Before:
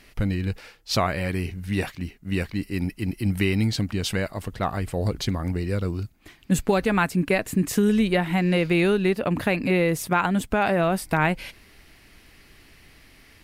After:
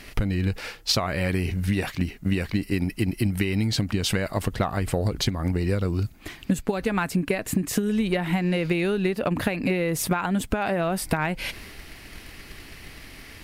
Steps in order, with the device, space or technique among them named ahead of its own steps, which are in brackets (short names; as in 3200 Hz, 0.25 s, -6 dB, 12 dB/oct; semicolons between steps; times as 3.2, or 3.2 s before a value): drum-bus smash (transient shaper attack +7 dB, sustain +3 dB; compressor 10:1, threshold -28 dBFS, peak gain reduction 18.5 dB; soft clip -17 dBFS, distortion -26 dB); gain +8 dB